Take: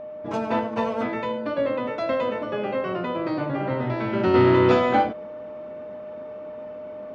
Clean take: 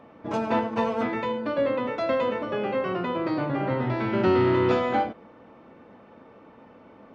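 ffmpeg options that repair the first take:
-af "bandreject=f=610:w=30,asetnsamples=n=441:p=0,asendcmd='4.34 volume volume -4.5dB',volume=0dB"

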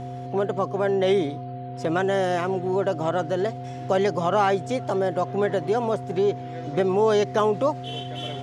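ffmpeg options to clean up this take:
-af "bandreject=f=127.9:t=h:w=4,bandreject=f=255.8:t=h:w=4,bandreject=f=383.7:t=h:w=4,bandreject=f=511.6:t=h:w=4,bandreject=f=710:w=30"

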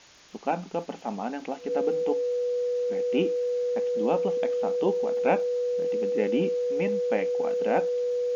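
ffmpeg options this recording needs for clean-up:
-af "adeclick=t=4,bandreject=f=490:w=30,afftdn=nr=30:nf=-40"

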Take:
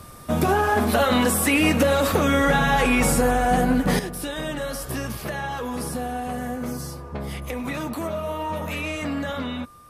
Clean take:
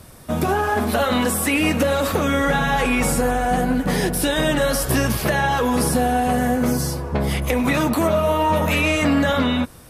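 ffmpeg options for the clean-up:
-af "bandreject=f=1.2k:w=30,asetnsamples=n=441:p=0,asendcmd='3.99 volume volume 10dB',volume=0dB"

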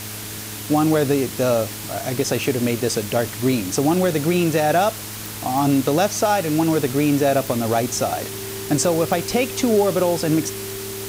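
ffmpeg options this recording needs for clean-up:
-af "adeclick=t=4,bandreject=f=106.2:t=h:w=4,bandreject=f=212.4:t=h:w=4,bandreject=f=318.6:t=h:w=4,bandreject=f=424.8:t=h:w=4,bandreject=f=390:w=30,afwtdn=0.025"

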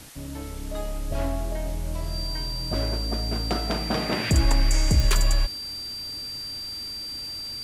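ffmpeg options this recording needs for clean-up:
-af "adeclick=t=4,bandreject=f=4.7k:w=30,afwtdn=0.0056"

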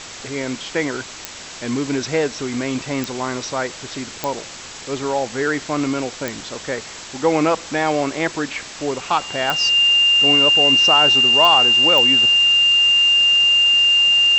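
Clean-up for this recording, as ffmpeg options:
-af "adeclick=t=4,bandreject=f=2.8k:w=30,afwtdn=0.028"

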